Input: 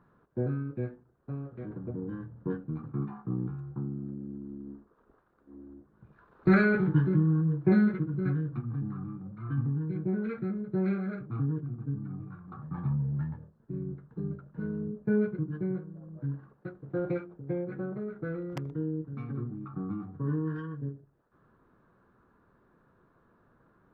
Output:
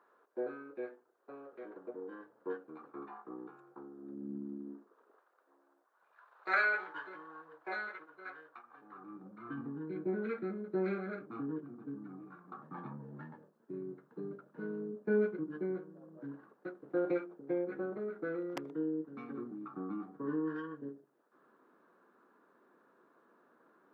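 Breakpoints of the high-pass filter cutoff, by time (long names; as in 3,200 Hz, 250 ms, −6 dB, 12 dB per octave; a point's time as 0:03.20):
high-pass filter 24 dB per octave
0:03.96 400 Hz
0:04.37 170 Hz
0:05.61 660 Hz
0:08.71 660 Hz
0:09.25 260 Hz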